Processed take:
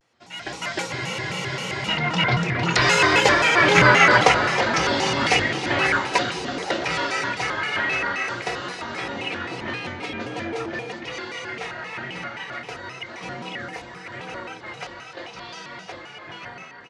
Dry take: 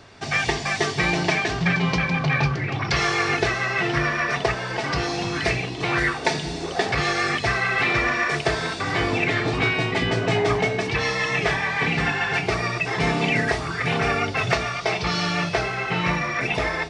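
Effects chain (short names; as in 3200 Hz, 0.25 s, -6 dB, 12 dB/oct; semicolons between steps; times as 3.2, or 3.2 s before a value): Doppler pass-by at 4.03, 17 m/s, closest 6.8 m; HPF 250 Hz 6 dB/oct; AGC gain up to 15 dB; feedback echo 0.327 s, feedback 58%, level -13 dB; on a send at -8.5 dB: reverb RT60 0.50 s, pre-delay 4 ms; on the sum: spectral freeze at 0.92, 0.94 s; shaped vibrato square 3.8 Hz, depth 250 cents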